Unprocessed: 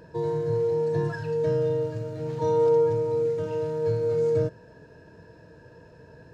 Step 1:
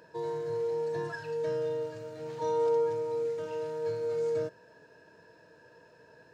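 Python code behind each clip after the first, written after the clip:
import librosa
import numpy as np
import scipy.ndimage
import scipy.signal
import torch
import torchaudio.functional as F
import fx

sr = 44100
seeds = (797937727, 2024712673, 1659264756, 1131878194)

y = fx.highpass(x, sr, hz=700.0, slope=6)
y = y * 10.0 ** (-1.5 / 20.0)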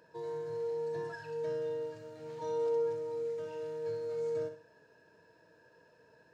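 y = fx.room_flutter(x, sr, wall_m=11.1, rt60_s=0.41)
y = y * 10.0 ** (-6.5 / 20.0)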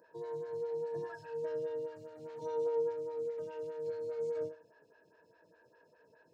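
y = fx.stagger_phaser(x, sr, hz=4.9)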